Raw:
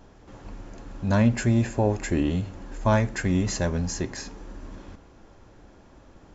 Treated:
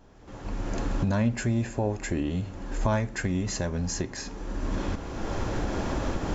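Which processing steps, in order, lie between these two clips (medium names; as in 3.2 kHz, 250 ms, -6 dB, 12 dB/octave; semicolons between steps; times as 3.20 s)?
recorder AGC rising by 23 dB/s; trim -5 dB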